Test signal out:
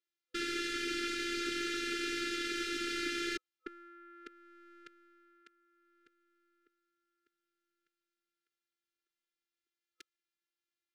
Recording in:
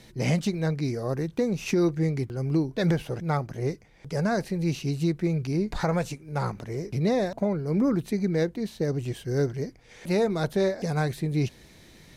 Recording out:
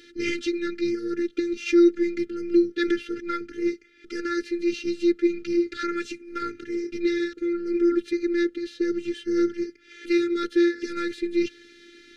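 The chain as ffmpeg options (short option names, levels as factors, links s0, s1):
-af "highpass=200,lowpass=4400,afftfilt=real='hypot(re,im)*cos(PI*b)':imag='0':win_size=512:overlap=0.75,afftfilt=real='re*(1-between(b*sr/4096,500,1300))':imag='im*(1-between(b*sr/4096,500,1300))':win_size=4096:overlap=0.75,volume=2.66"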